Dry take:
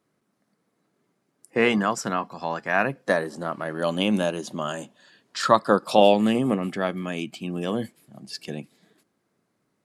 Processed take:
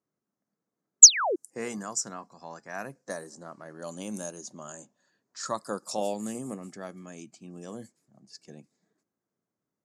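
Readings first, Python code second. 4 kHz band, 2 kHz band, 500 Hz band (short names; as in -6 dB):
+2.0 dB, -11.5 dB, -12.5 dB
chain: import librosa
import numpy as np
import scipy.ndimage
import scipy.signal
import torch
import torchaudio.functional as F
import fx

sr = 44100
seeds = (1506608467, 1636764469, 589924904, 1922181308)

y = fx.spec_paint(x, sr, seeds[0], shape='fall', start_s=1.02, length_s=0.34, low_hz=310.0, high_hz=8200.0, level_db=-12.0)
y = fx.env_lowpass(y, sr, base_hz=2400.0, full_db=-17.0)
y = fx.high_shelf_res(y, sr, hz=4600.0, db=14.0, q=3.0)
y = F.gain(torch.from_numpy(y), -14.0).numpy()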